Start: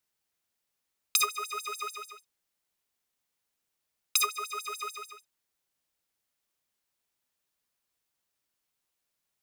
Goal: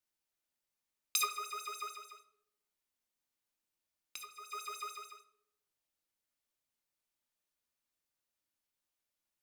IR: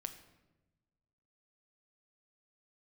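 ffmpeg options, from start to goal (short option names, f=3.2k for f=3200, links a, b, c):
-filter_complex "[0:a]asettb=1/sr,asplit=3[a][b][c];[a]atrim=end=1.884[d];[b]atrim=start=1.88:end=4.52,asetpts=PTS-STARTPTS,afade=t=in:d=0.004:c=qsin,afade=t=out:st=2.636:d=0.004:c=qsin,acompressor=threshold=-40dB:ratio=5[e];[c]atrim=start=4.516[f];[d][e]acrossfade=d=0.004:c1=hsin:c2=qsin[g];[g][f]acrossfade=d=0.004:c1=qsin:c2=hsin[h];[1:a]atrim=start_sample=2205,asetrate=83790,aresample=44100[i];[h][i]afir=irnorm=-1:irlink=0,volume=1.5dB"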